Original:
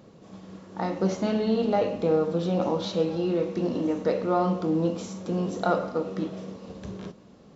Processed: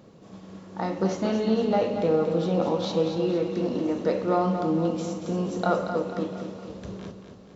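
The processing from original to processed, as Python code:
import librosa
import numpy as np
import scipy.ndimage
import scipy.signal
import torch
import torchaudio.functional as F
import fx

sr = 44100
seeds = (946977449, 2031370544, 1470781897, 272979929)

y = x + fx.echo_feedback(x, sr, ms=231, feedback_pct=48, wet_db=-8.0, dry=0)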